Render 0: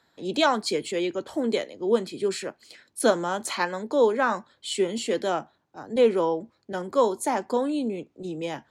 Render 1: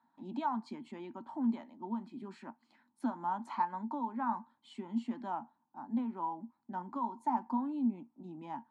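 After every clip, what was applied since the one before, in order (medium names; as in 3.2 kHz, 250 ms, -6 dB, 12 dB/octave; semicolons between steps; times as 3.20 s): compression 5:1, threshold -24 dBFS, peak gain reduction 9.5 dB; two resonant band-passes 470 Hz, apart 1.9 oct; trim +2.5 dB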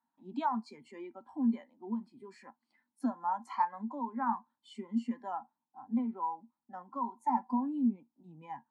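spectral noise reduction 14 dB; trim +2.5 dB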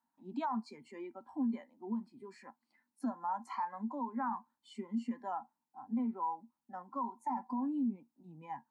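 peaking EQ 3.3 kHz -4.5 dB 0.31 oct; peak limiter -28 dBFS, peak gain reduction 10 dB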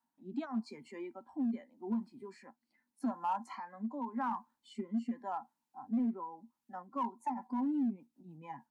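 rotary cabinet horn 0.85 Hz, later 6.7 Hz, at 6.52 s; in parallel at -7 dB: overload inside the chain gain 34.5 dB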